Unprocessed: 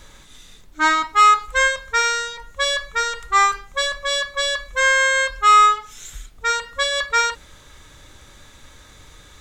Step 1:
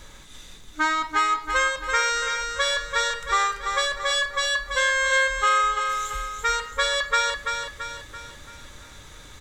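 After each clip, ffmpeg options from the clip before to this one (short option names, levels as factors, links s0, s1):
-filter_complex "[0:a]acompressor=threshold=0.1:ratio=5,asplit=2[s0][s1];[s1]aecho=0:1:336|672|1008|1344|1680|2016:0.501|0.241|0.115|0.0554|0.0266|0.0128[s2];[s0][s2]amix=inputs=2:normalize=0"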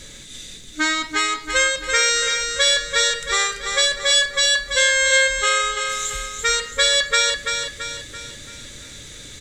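-af "equalizer=f=125:t=o:w=1:g=6,equalizer=f=250:t=o:w=1:g=6,equalizer=f=500:t=o:w=1:g=6,equalizer=f=1000:t=o:w=1:g=-10,equalizer=f=2000:t=o:w=1:g=6,equalizer=f=4000:t=o:w=1:g=7,equalizer=f=8000:t=o:w=1:g=11"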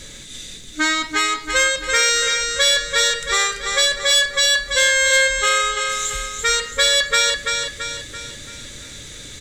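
-af "acontrast=71,volume=0.596"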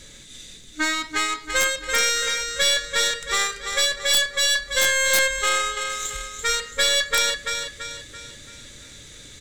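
-af "aeval=exprs='0.501*(cos(1*acos(clip(val(0)/0.501,-1,1)))-cos(1*PI/2))+0.112*(cos(2*acos(clip(val(0)/0.501,-1,1)))-cos(2*PI/2))+0.0794*(cos(3*acos(clip(val(0)/0.501,-1,1)))-cos(3*PI/2))+0.0316*(cos(5*acos(clip(val(0)/0.501,-1,1)))-cos(5*PI/2))+0.0224*(cos(7*acos(clip(val(0)/0.501,-1,1)))-cos(7*PI/2))':c=same,aeval=exprs='(mod(2.24*val(0)+1,2)-1)/2.24':c=same,volume=0.841"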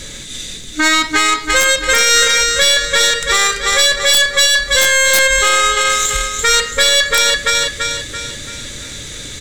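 -af "alimiter=level_in=5.96:limit=0.891:release=50:level=0:latency=1,volume=0.891"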